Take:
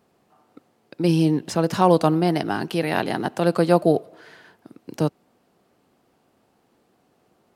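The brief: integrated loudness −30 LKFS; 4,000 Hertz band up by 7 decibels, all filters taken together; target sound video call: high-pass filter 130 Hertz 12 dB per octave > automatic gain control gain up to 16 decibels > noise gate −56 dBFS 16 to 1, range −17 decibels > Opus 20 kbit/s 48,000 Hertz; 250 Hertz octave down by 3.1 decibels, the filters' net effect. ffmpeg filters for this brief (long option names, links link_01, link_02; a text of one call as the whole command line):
ffmpeg -i in.wav -af "highpass=130,equalizer=frequency=250:width_type=o:gain=-4.5,equalizer=frequency=4000:width_type=o:gain=9,dynaudnorm=maxgain=16dB,agate=range=-17dB:threshold=-56dB:ratio=16,volume=-7dB" -ar 48000 -c:a libopus -b:a 20k out.opus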